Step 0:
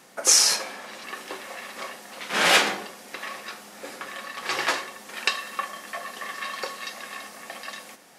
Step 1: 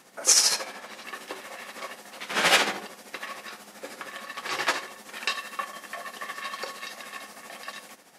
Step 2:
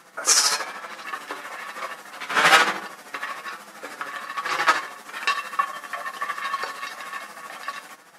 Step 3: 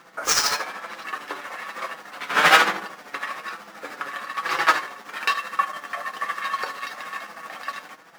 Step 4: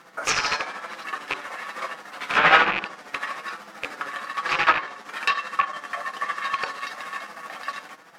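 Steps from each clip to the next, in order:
amplitude tremolo 13 Hz, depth 53%
flanger 1.1 Hz, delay 5.8 ms, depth 1.3 ms, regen +41%; parametric band 1,300 Hz +9.5 dB 1.1 octaves; level +4.5 dB
running median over 5 samples; level +1 dB
loose part that buzzes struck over −45 dBFS, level −12 dBFS; treble cut that deepens with the level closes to 2,800 Hz, closed at −15 dBFS

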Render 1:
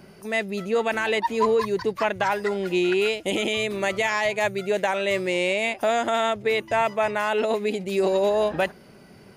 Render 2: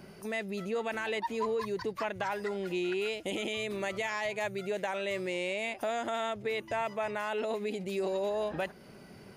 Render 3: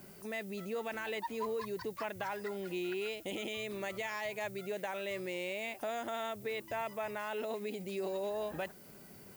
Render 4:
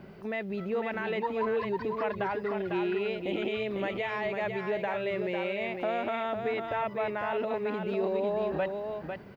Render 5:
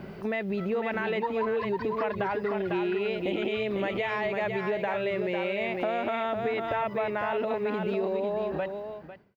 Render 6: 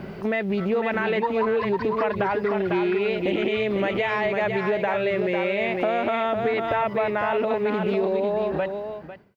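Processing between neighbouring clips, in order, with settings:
in parallel at −1 dB: brickwall limiter −24 dBFS, peak gain reduction 11.5 dB; on the sum: downward compressor 1.5 to 1, threshold −30 dBFS, peak gain reduction 6 dB; level −8 dB
background noise violet −53 dBFS; level −5 dB
high-frequency loss of the air 350 metres; single-tap delay 500 ms −5.5 dB; level +8 dB
fade-out on the ending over 1.44 s; downward compressor 3 to 1, threshold −34 dBFS, peak gain reduction 6.5 dB; level +7 dB
highs frequency-modulated by the lows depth 0.11 ms; level +5.5 dB

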